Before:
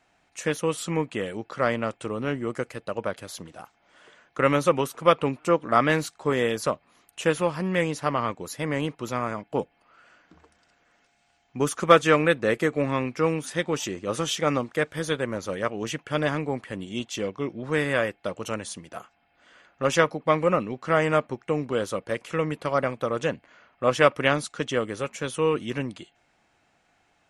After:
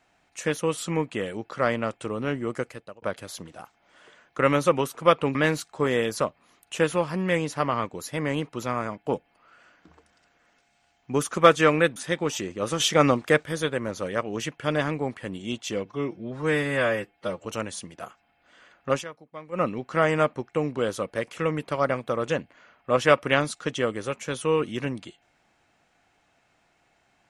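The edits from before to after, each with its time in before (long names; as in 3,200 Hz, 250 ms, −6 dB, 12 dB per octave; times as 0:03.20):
0:02.62–0:03.02: fade out
0:05.35–0:05.81: remove
0:12.42–0:13.43: remove
0:14.27–0:14.90: clip gain +5 dB
0:17.32–0:18.39: time-stretch 1.5×
0:19.86–0:20.57: duck −19 dB, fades 0.12 s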